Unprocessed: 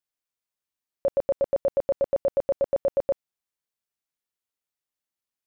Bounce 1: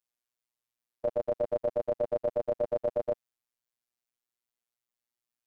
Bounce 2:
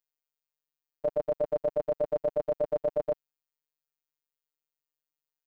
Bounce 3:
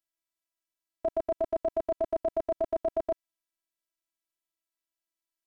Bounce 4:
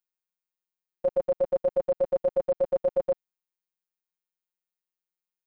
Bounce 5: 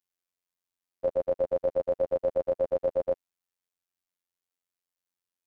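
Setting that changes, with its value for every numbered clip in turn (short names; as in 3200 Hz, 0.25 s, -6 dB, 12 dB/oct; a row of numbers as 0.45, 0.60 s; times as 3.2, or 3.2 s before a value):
robotiser, frequency: 120, 150, 330, 180, 89 Hz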